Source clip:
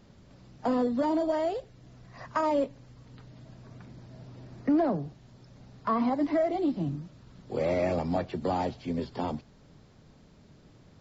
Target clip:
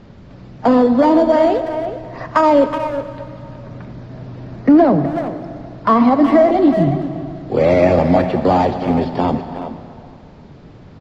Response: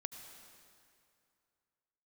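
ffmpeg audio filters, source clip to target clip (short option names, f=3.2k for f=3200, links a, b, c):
-filter_complex "[0:a]adynamicsmooth=sensitivity=4.5:basefreq=3.8k,asplit=2[a][b];[b]adelay=370,highpass=300,lowpass=3.4k,asoftclip=type=hard:threshold=-24.5dB,volume=-10dB[c];[a][c]amix=inputs=2:normalize=0,asplit=2[d][e];[1:a]atrim=start_sample=2205[f];[e][f]afir=irnorm=-1:irlink=0,volume=7.5dB[g];[d][g]amix=inputs=2:normalize=0,volume=6.5dB"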